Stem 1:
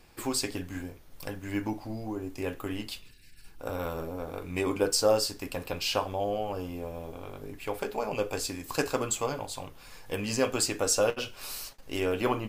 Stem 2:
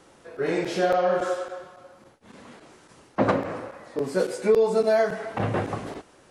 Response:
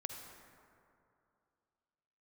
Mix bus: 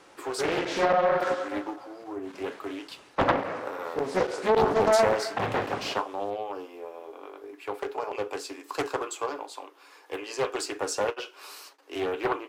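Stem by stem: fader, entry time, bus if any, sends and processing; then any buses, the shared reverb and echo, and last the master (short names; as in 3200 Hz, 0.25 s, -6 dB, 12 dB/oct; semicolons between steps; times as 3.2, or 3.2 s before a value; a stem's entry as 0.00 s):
+3.0 dB, 0.00 s, no send, rippled Chebyshev high-pass 280 Hz, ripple 6 dB
+3.0 dB, 0.00 s, no send, low shelf 370 Hz -12 dB; treble ducked by the level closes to 900 Hz, closed at -16 dBFS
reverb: off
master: high shelf 7900 Hz -9 dB; Doppler distortion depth 0.8 ms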